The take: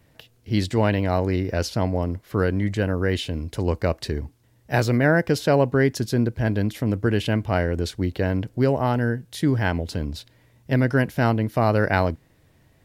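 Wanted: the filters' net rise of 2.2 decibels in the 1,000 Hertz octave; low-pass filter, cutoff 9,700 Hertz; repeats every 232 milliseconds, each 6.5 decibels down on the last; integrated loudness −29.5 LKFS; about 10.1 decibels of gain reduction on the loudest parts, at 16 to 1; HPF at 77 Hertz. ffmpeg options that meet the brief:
ffmpeg -i in.wav -af "highpass=77,lowpass=9700,equalizer=frequency=1000:width_type=o:gain=3,acompressor=threshold=-23dB:ratio=16,aecho=1:1:232|464|696|928|1160|1392:0.473|0.222|0.105|0.0491|0.0231|0.0109" out.wav

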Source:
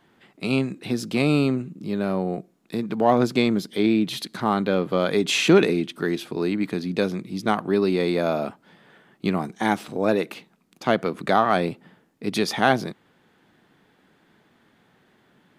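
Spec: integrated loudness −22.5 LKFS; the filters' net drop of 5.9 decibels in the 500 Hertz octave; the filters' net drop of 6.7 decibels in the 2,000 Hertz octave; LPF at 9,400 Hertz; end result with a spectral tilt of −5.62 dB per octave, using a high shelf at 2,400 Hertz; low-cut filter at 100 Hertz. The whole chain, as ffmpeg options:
ffmpeg -i in.wav -af "highpass=100,lowpass=9400,equalizer=frequency=500:width_type=o:gain=-7.5,equalizer=frequency=2000:width_type=o:gain=-4.5,highshelf=frequency=2400:gain=-8,volume=4.5dB" out.wav

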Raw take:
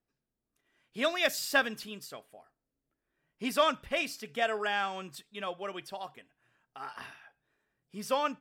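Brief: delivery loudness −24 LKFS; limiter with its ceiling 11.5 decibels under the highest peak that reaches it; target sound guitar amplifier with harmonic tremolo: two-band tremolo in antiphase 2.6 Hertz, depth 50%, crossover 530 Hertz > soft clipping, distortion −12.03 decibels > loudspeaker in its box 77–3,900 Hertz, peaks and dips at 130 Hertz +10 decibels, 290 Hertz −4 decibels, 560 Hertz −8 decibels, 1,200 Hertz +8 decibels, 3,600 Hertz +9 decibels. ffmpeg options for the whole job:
ffmpeg -i in.wav -filter_complex "[0:a]alimiter=level_in=1dB:limit=-24dB:level=0:latency=1,volume=-1dB,acrossover=split=530[link_01][link_02];[link_01]aeval=exprs='val(0)*(1-0.5/2+0.5/2*cos(2*PI*2.6*n/s))':channel_layout=same[link_03];[link_02]aeval=exprs='val(0)*(1-0.5/2-0.5/2*cos(2*PI*2.6*n/s))':channel_layout=same[link_04];[link_03][link_04]amix=inputs=2:normalize=0,asoftclip=threshold=-34.5dB,highpass=77,equalizer=frequency=130:width_type=q:width=4:gain=10,equalizer=frequency=290:width_type=q:width=4:gain=-4,equalizer=frequency=560:width_type=q:width=4:gain=-8,equalizer=frequency=1200:width_type=q:width=4:gain=8,equalizer=frequency=3600:width_type=q:width=4:gain=9,lowpass=frequency=3900:width=0.5412,lowpass=frequency=3900:width=1.3066,volume=17.5dB" out.wav

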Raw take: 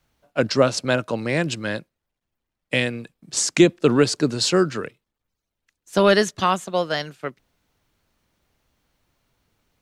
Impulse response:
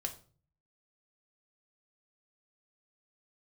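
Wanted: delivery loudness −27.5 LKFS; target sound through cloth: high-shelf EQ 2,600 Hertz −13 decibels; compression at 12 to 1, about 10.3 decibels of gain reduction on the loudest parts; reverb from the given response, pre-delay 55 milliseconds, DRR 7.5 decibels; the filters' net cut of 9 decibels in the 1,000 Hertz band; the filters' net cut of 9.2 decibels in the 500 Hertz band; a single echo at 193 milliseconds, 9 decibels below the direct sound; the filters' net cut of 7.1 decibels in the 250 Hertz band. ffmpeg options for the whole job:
-filter_complex "[0:a]equalizer=frequency=250:width_type=o:gain=-6.5,equalizer=frequency=500:width_type=o:gain=-7.5,equalizer=frequency=1000:width_type=o:gain=-7,acompressor=threshold=-24dB:ratio=12,aecho=1:1:193:0.355,asplit=2[link_01][link_02];[1:a]atrim=start_sample=2205,adelay=55[link_03];[link_02][link_03]afir=irnorm=-1:irlink=0,volume=-7.5dB[link_04];[link_01][link_04]amix=inputs=2:normalize=0,highshelf=frequency=2600:gain=-13,volume=5.5dB"

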